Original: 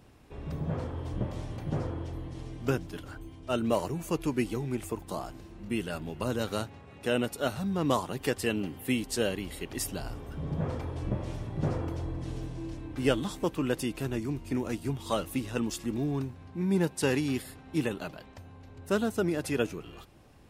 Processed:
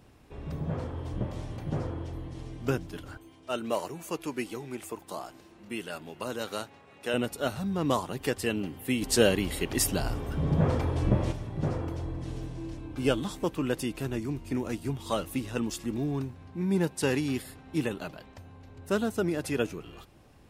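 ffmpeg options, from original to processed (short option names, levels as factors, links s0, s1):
-filter_complex "[0:a]asettb=1/sr,asplit=3[s0][s1][s2];[s0]atrim=end=3.174[s3];[s1]atrim=start=3.17:end=7.14,asetpts=PTS-STARTPTS,afade=t=in:d=0.004:c=qsin,afade=t=out:st=3.966:d=0.004:c=qsin,highpass=f=440:p=1[s4];[s2]atrim=start=7.136[s5];[s3][s4]acrossfade=d=0.004:c1=hsin:c2=qsin[s6];[s6][s5]acrossfade=d=0.004:c1=qsin:c2=hsin,asplit=3[s7][s8][s9];[s7]afade=t=out:st=9.01:d=0.02[s10];[s8]acontrast=89,afade=t=in:st=9.01:d=0.02,afade=t=out:st=11.31:d=0.02[s11];[s9]afade=t=in:st=11.31:d=0.02[s12];[s10][s11][s12]amix=inputs=3:normalize=0,asettb=1/sr,asplit=3[s13][s14][s15];[s13]atrim=end=12.784[s16];[s14]atrim=start=12.78:end=13.18,asetpts=PTS-STARTPTS,afade=t=in:d=0.004:c=qsin,afade=t=out:st=0.396:d=0.004:c=qsin,asuperstop=centerf=1900:order=4:qfactor=6.7[s17];[s15]atrim=start=13.176[s18];[s16][s17]acrossfade=d=0.004:c1=hsin:c2=qsin[s19];[s19][s18]acrossfade=d=0.004:c1=qsin:c2=hsin"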